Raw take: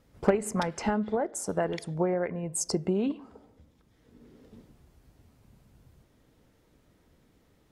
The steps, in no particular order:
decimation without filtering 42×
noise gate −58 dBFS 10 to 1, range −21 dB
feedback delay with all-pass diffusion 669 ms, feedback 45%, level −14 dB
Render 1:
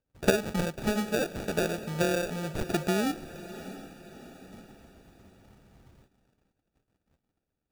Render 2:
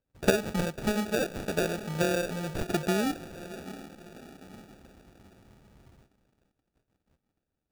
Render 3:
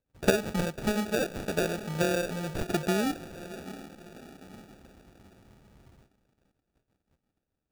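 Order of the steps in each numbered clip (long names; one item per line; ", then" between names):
decimation without filtering, then feedback delay with all-pass diffusion, then noise gate
feedback delay with all-pass diffusion, then decimation without filtering, then noise gate
feedback delay with all-pass diffusion, then noise gate, then decimation without filtering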